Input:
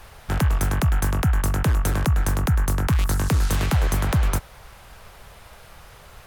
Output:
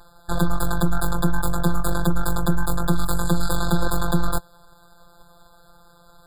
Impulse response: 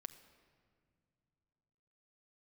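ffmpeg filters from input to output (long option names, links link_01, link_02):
-af "aeval=exprs='0.251*(cos(1*acos(clip(val(0)/0.251,-1,1)))-cos(1*PI/2))+0.0794*(cos(4*acos(clip(val(0)/0.251,-1,1)))-cos(4*PI/2))+0.0158*(cos(7*acos(clip(val(0)/0.251,-1,1)))-cos(7*PI/2))':channel_layout=same,afftfilt=real='hypot(re,im)*cos(PI*b)':imag='0':win_size=1024:overlap=0.75,afftfilt=real='re*eq(mod(floor(b*sr/1024/1700),2),0)':imag='im*eq(mod(floor(b*sr/1024/1700),2),0)':win_size=1024:overlap=0.75,volume=3.5dB"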